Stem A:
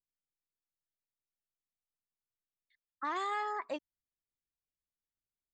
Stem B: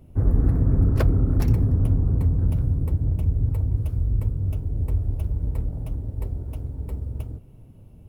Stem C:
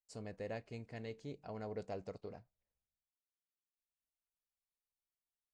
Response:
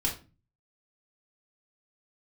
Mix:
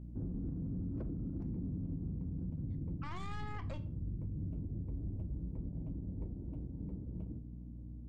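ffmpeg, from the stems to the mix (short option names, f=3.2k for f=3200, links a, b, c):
-filter_complex "[0:a]aeval=exprs='0.0501*(cos(1*acos(clip(val(0)/0.0501,-1,1)))-cos(1*PI/2))+0.01*(cos(4*acos(clip(val(0)/0.0501,-1,1)))-cos(4*PI/2))':c=same,volume=-1.5dB,asplit=2[a][b];[b]volume=-14.5dB[c];[1:a]bandpass=f=220:t=q:w=2:csg=0,volume=-1dB,asplit=2[d][e];[e]volume=-13.5dB[f];[3:a]atrim=start_sample=2205[g];[c][f]amix=inputs=2:normalize=0[h];[h][g]afir=irnorm=-1:irlink=0[i];[a][d][i]amix=inputs=3:normalize=0,aeval=exprs='val(0)+0.00501*(sin(2*PI*60*n/s)+sin(2*PI*2*60*n/s)/2+sin(2*PI*3*60*n/s)/3+sin(2*PI*4*60*n/s)/4+sin(2*PI*5*60*n/s)/5)':c=same,alimiter=level_in=8.5dB:limit=-24dB:level=0:latency=1:release=159,volume=-8.5dB"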